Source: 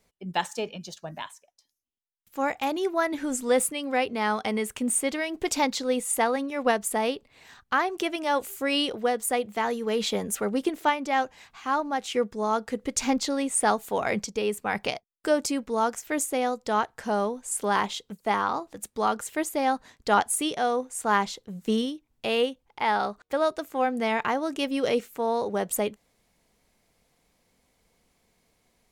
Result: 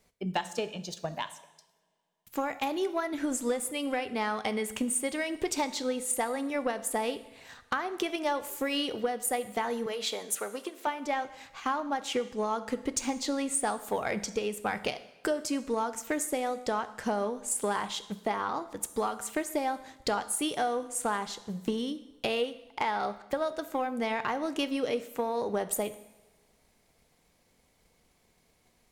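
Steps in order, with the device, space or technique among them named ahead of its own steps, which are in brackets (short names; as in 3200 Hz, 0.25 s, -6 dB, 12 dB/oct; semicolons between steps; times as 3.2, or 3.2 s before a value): drum-bus smash (transient shaper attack +6 dB, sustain 0 dB; compressor, threshold -26 dBFS, peak gain reduction 13 dB; soft clip -18 dBFS, distortion -22 dB); 9.86–10.87 Bessel high-pass 580 Hz, order 2; two-slope reverb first 0.89 s, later 3.3 s, from -25 dB, DRR 11.5 dB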